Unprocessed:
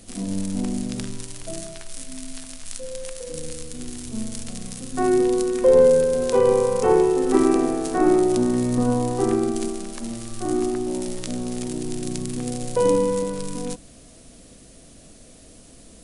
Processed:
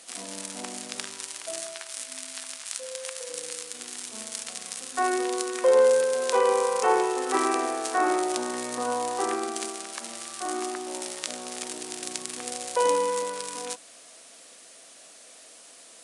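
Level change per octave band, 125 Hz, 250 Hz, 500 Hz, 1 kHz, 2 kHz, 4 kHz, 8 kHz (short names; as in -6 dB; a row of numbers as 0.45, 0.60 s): under -25 dB, -13.0 dB, -6.0 dB, +2.0 dB, +4.0 dB, +3.0 dB, +2.0 dB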